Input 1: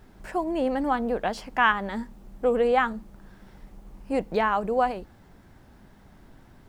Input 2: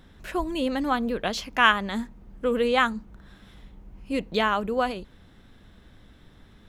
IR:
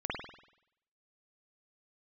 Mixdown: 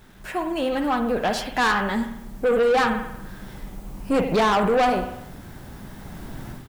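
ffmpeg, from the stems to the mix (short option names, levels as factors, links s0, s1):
-filter_complex "[0:a]equalizer=f=150:w=1.5:g=4,dynaudnorm=f=650:g=3:m=6.68,acrusher=bits=8:mix=0:aa=0.5,volume=0.841,asplit=2[s0][s1];[s1]volume=0.224[s2];[1:a]highpass=f=970:w=0.5412,highpass=f=970:w=1.3066,highshelf=f=4100:g=-10,acompressor=threshold=0.0224:ratio=6,adelay=8.8,volume=1,asplit=2[s3][s4];[s4]volume=0.631[s5];[2:a]atrim=start_sample=2205[s6];[s2][s5]amix=inputs=2:normalize=0[s7];[s7][s6]afir=irnorm=-1:irlink=0[s8];[s0][s3][s8]amix=inputs=3:normalize=0,highshelf=f=7200:g=7.5,asoftclip=type=tanh:threshold=0.168"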